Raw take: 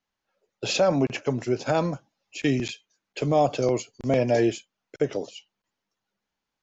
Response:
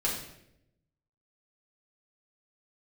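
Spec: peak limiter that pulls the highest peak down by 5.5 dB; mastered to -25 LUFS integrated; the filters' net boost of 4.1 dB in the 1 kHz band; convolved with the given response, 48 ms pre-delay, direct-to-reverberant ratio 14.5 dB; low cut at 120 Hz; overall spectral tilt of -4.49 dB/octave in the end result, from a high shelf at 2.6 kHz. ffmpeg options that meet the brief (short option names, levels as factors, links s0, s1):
-filter_complex "[0:a]highpass=120,equalizer=f=1000:t=o:g=5.5,highshelf=f=2600:g=6,alimiter=limit=0.224:level=0:latency=1,asplit=2[s0][s1];[1:a]atrim=start_sample=2205,adelay=48[s2];[s1][s2]afir=irnorm=-1:irlink=0,volume=0.0841[s3];[s0][s3]amix=inputs=2:normalize=0,volume=1.06"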